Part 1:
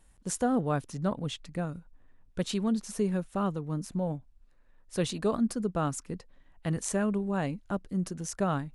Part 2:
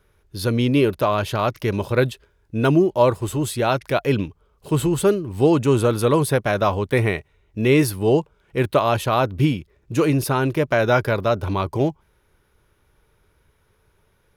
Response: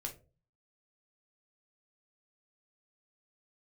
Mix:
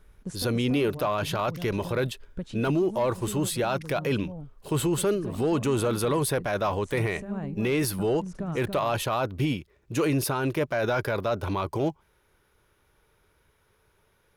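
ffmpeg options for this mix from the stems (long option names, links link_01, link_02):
-filter_complex "[0:a]lowshelf=frequency=240:gain=10,acompressor=threshold=-27dB:ratio=6,highshelf=frequency=3500:gain=-10,volume=-3dB,asplit=2[link_01][link_02];[link_02]volume=-4.5dB[link_03];[1:a]lowshelf=frequency=260:gain=-6,asoftclip=type=tanh:threshold=-8.5dB,volume=-1dB,asplit=2[link_04][link_05];[link_05]apad=whole_len=385493[link_06];[link_01][link_06]sidechaincompress=threshold=-35dB:ratio=8:attack=42:release=179[link_07];[link_03]aecho=0:1:283:1[link_08];[link_07][link_04][link_08]amix=inputs=3:normalize=0,alimiter=limit=-18dB:level=0:latency=1:release=11"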